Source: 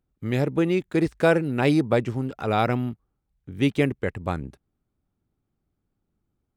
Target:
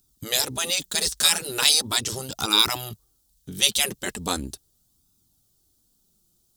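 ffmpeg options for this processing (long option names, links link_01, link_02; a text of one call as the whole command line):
ffmpeg -i in.wav -af "afftfilt=real='re*lt(hypot(re,im),0.224)':imag='im*lt(hypot(re,im),0.224)':win_size=1024:overlap=0.75,aexciter=amount=7:drive=9:freq=3400,flanger=delay=0.8:depth=4.8:regen=-32:speed=0.39:shape=sinusoidal,volume=6.5dB" out.wav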